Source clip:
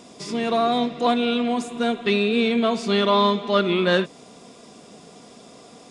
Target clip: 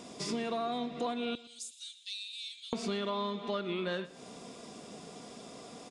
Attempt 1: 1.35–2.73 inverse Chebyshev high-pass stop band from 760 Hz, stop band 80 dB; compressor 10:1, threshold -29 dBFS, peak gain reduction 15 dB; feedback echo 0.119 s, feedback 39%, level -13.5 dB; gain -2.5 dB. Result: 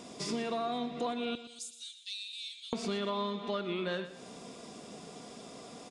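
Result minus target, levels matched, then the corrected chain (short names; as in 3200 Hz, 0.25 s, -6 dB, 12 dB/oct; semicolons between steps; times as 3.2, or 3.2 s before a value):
echo-to-direct +6 dB
1.35–2.73 inverse Chebyshev high-pass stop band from 760 Hz, stop band 80 dB; compressor 10:1, threshold -29 dBFS, peak gain reduction 15 dB; feedback echo 0.119 s, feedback 39%, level -19.5 dB; gain -2.5 dB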